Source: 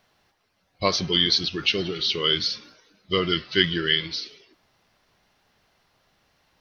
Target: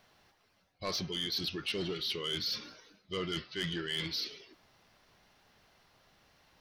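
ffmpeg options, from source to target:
-af "areverse,acompressor=threshold=0.0282:ratio=5,areverse,asoftclip=type=tanh:threshold=0.0422"

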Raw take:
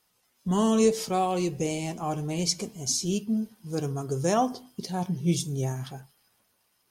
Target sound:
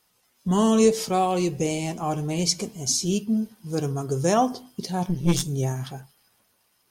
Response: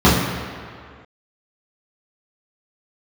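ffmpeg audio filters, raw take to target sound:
-filter_complex "[0:a]asettb=1/sr,asplit=3[s0][s1][s2];[s0]atrim=end=5.064[s3];[s1]atrim=start=5.06:end=5.48,asetpts=PTS-STARTPTS,afade=t=in:d=0.004:c=qsin,afade=t=out:st=0.416:d=0.004:c=qsin,aeval=exprs='0.211*(cos(1*acos(clip(val(0)/0.211,-1,1)))-cos(1*PI/2))+0.0422*(cos(4*acos(clip(val(0)/0.211,-1,1)))-cos(4*PI/2))':c=same[s4];[s2]atrim=start=5.476[s5];[s3][s4]acrossfade=d=0.004:c1=hsin:c2=qsin[s6];[s6][s5]acrossfade=d=0.004:c1=qsin:c2=hsin,volume=1.5"

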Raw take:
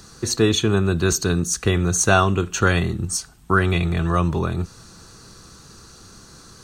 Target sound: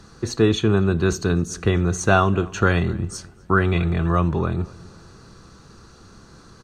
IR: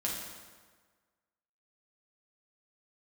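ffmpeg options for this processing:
-filter_complex "[0:a]aemphasis=mode=reproduction:type=75kf,asplit=2[s0][s1];[s1]adelay=248,lowpass=f=2600:p=1,volume=0.0841,asplit=2[s2][s3];[s3]adelay=248,lowpass=f=2600:p=1,volume=0.41,asplit=2[s4][s5];[s5]adelay=248,lowpass=f=2600:p=1,volume=0.41[s6];[s0][s2][s4][s6]amix=inputs=4:normalize=0,asplit=2[s7][s8];[1:a]atrim=start_sample=2205,atrim=end_sample=4410[s9];[s8][s9]afir=irnorm=-1:irlink=0,volume=0.0631[s10];[s7][s10]amix=inputs=2:normalize=0"

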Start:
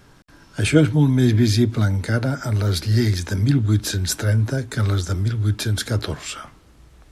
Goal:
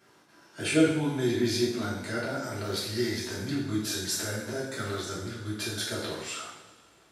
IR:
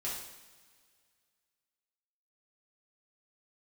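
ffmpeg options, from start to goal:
-filter_complex "[0:a]highpass=250[s0];[1:a]atrim=start_sample=2205[s1];[s0][s1]afir=irnorm=-1:irlink=0,volume=0.447"

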